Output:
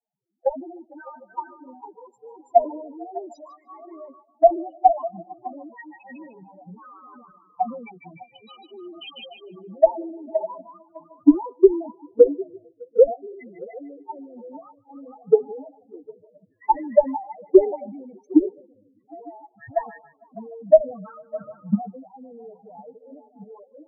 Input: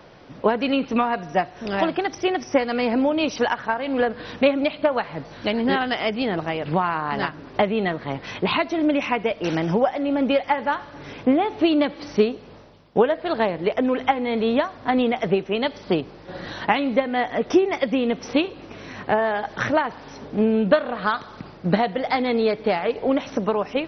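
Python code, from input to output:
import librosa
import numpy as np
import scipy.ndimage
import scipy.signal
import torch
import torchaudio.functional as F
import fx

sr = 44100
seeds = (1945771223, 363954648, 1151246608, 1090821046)

y = fx.pitch_glide(x, sr, semitones=4.5, runs='ending unshifted')
y = fx.spec_repair(y, sr, seeds[0], start_s=13.29, length_s=0.28, low_hz=280.0, high_hz=1600.0, source='both')
y = fx.level_steps(y, sr, step_db=17)
y = fx.cheby_harmonics(y, sr, harmonics=(3, 7, 8), levels_db=(-44, -32, -26), full_scale_db=-4.5)
y = fx.spec_topn(y, sr, count=2)
y = fx.echo_stepped(y, sr, ms=151, hz=3100.0, octaves=-0.7, feedback_pct=70, wet_db=-1)
y = fx.band_widen(y, sr, depth_pct=100)
y = y * librosa.db_to_amplitude(4.5)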